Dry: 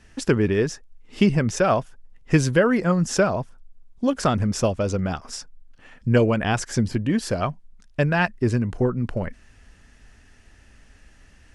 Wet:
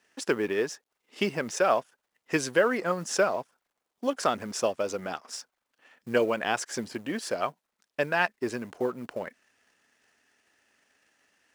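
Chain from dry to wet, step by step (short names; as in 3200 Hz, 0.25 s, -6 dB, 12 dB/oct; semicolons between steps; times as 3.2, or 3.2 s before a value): G.711 law mismatch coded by A; HPF 390 Hz 12 dB/oct; gain -2.5 dB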